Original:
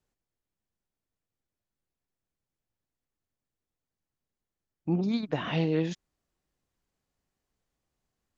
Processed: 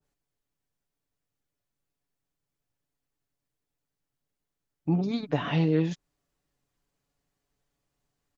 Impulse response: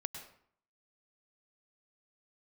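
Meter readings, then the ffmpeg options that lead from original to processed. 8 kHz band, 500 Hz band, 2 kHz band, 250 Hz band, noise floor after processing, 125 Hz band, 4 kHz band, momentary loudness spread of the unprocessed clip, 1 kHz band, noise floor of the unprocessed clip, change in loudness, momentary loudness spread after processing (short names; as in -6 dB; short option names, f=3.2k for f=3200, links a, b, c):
n/a, +1.0 dB, +0.5 dB, +2.0 dB, under -85 dBFS, +4.0 dB, 0.0 dB, 10 LU, +2.5 dB, under -85 dBFS, +2.0 dB, 10 LU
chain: -af "aecho=1:1:7:0.49,adynamicequalizer=threshold=0.00562:dfrequency=1500:dqfactor=0.7:tfrequency=1500:tqfactor=0.7:attack=5:release=100:ratio=0.375:range=2.5:mode=cutabove:tftype=highshelf,volume=1.5dB"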